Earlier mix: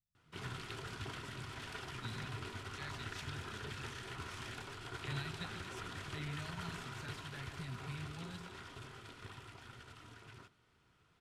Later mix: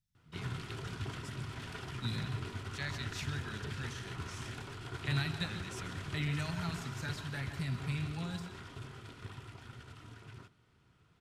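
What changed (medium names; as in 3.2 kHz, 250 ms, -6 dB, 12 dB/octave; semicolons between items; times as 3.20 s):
speech +9.0 dB; background: add peaking EQ 120 Hz +7 dB 2.7 oct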